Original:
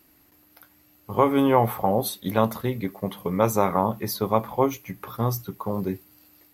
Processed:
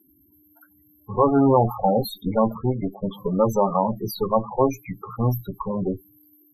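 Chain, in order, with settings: added harmonics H 5 -35 dB, 6 -27 dB, 8 -15 dB, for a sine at -5 dBFS; in parallel at -5.5 dB: overloaded stage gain 18 dB; on the sum: loudest bins only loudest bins 16; MP3 128 kbps 44100 Hz

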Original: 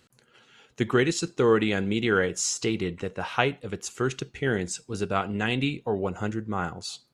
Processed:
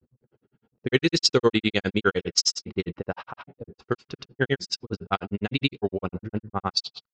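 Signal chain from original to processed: grains 73 ms, grains 9.8/s, pitch spread up and down by 0 st; synth low-pass 5000 Hz, resonance Q 5.6; low-pass opened by the level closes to 350 Hz, open at -24 dBFS; gain +5 dB

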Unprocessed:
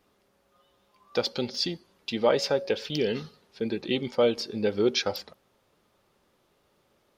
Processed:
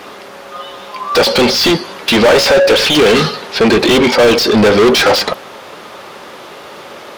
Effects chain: overdrive pedal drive 40 dB, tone 2800 Hz, clips at -8 dBFS; gain +7 dB

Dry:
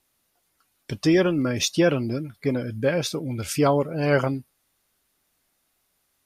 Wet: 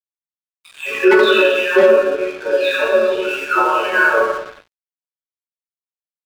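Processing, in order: spectral delay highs early, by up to 0.868 s; mistuned SSB -97 Hz 450–3400 Hz; comb 0.8 ms, depth 74%; gate -45 dBFS, range -8 dB; reverb RT60 1.1 s, pre-delay 3 ms, DRR -4 dB; wavefolder -2.5 dBFS; frequency shift +150 Hz; resonator bank F#3 minor, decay 0.21 s; analogue delay 92 ms, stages 1024, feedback 65%, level -21 dB; crossover distortion -50.5 dBFS; maximiser +18 dB; gain -1 dB

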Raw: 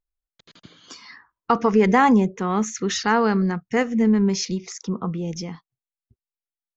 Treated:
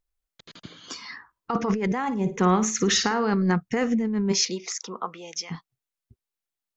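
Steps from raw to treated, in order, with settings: 4.31–5.5 HPF 320 Hz -> 1200 Hz 12 dB/oct; negative-ratio compressor -23 dBFS, ratio -1; 1.98–3.31 flutter echo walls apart 9.4 m, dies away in 0.28 s

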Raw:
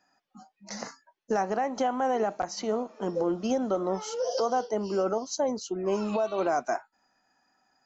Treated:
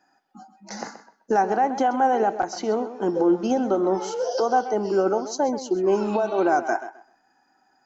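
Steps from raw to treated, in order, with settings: small resonant body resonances 340/810/1500 Hz, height 9 dB, ringing for 20 ms; on a send: tape echo 0.13 s, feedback 23%, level -11.5 dB, low-pass 5500 Hz; on the sum: gain +1 dB

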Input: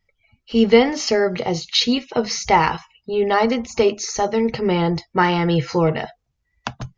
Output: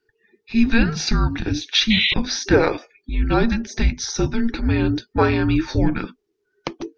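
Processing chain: frequency shift -460 Hz; painted sound noise, 1.9–2.14, 1900–4100 Hz -19 dBFS

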